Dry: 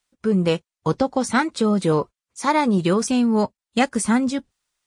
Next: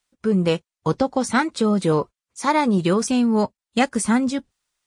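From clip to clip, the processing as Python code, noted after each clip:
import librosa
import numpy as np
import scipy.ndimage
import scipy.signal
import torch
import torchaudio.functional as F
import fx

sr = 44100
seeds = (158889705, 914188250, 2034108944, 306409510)

y = x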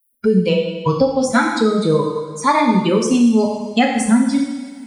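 y = fx.bin_expand(x, sr, power=2.0)
y = fx.rev_double_slope(y, sr, seeds[0], early_s=0.92, late_s=2.7, knee_db=-28, drr_db=-0.5)
y = fx.band_squash(y, sr, depth_pct=70)
y = y * 10.0 ** (4.5 / 20.0)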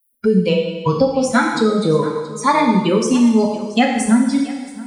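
y = x + 10.0 ** (-18.5 / 20.0) * np.pad(x, (int(677 * sr / 1000.0), 0))[:len(x)]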